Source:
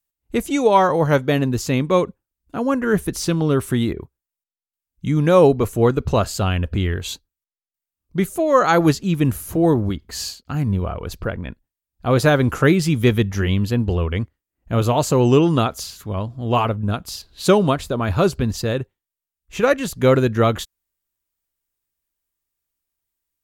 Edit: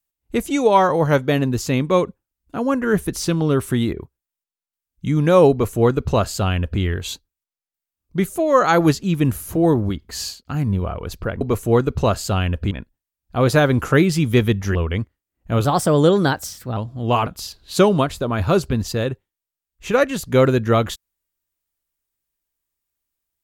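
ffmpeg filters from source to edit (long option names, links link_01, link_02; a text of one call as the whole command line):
ffmpeg -i in.wav -filter_complex "[0:a]asplit=7[link_01][link_02][link_03][link_04][link_05][link_06][link_07];[link_01]atrim=end=11.412[link_08];[link_02]atrim=start=5.508:end=6.812[link_09];[link_03]atrim=start=11.408:end=13.452[link_10];[link_04]atrim=start=13.958:end=14.864[link_11];[link_05]atrim=start=14.86:end=16.19,asetpts=PTS-STARTPTS,asetrate=52479,aresample=44100,atrim=end_sample=49288,asetpts=PTS-STARTPTS[link_12];[link_06]atrim=start=16.186:end=16.692[link_13];[link_07]atrim=start=16.958[link_14];[link_08][link_09]acrossfade=duration=0.004:curve1=hsin:curve2=hsin[link_15];[link_15][link_10]acrossfade=duration=0.004:curve1=hsin:curve2=hsin[link_16];[link_16][link_11]acrossfade=duration=0.004:curve1=hsin:curve2=hsin[link_17];[link_17][link_12]acrossfade=duration=0.004:curve1=hsin:curve2=hsin[link_18];[link_18][link_13]acrossfade=duration=0.004:curve1=hsin:curve2=hsin[link_19];[link_19][link_14]acrossfade=duration=0.004:curve1=hsin:curve2=hsin" out.wav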